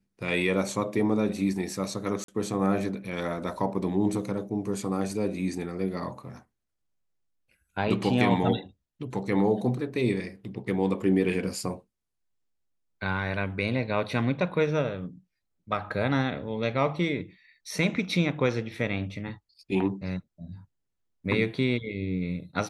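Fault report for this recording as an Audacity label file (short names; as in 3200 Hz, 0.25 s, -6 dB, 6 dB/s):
2.240000	2.280000	gap 43 ms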